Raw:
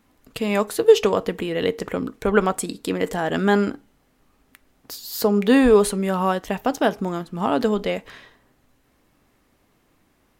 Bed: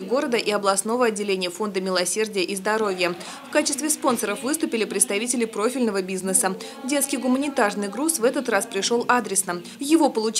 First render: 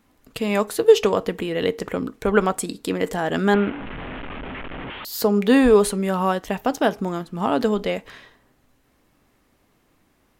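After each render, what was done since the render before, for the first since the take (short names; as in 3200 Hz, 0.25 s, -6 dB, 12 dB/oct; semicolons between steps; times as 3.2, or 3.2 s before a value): 3.54–5.05 delta modulation 16 kbps, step -26.5 dBFS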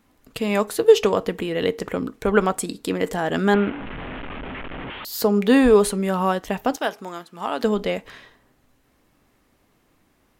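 6.76–7.64 HPF 920 Hz 6 dB/oct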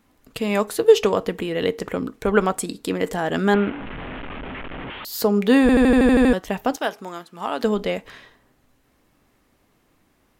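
5.61 stutter in place 0.08 s, 9 plays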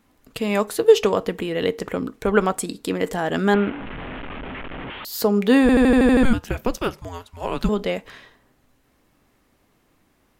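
6.23–7.69 frequency shift -260 Hz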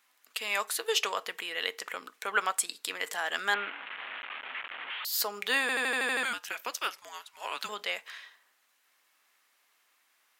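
HPF 1400 Hz 12 dB/oct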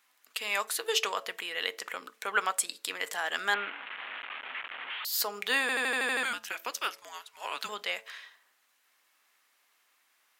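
de-hum 111.2 Hz, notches 6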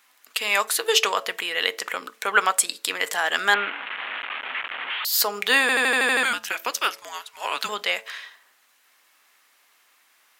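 gain +9 dB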